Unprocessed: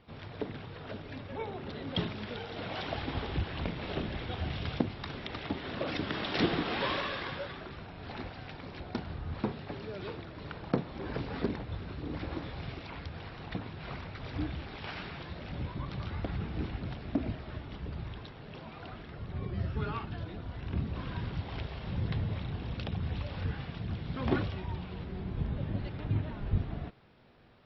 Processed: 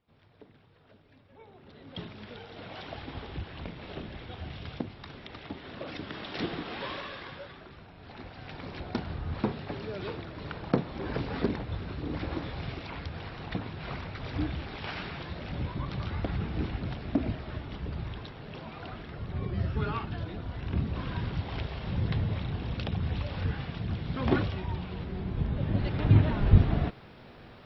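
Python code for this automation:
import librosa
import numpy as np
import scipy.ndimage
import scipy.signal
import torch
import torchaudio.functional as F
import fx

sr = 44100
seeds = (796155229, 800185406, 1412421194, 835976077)

y = fx.gain(x, sr, db=fx.line((1.27, -17.0), (2.23, -5.0), (8.16, -5.0), (8.61, 3.5), (25.52, 3.5), (26.12, 11.0)))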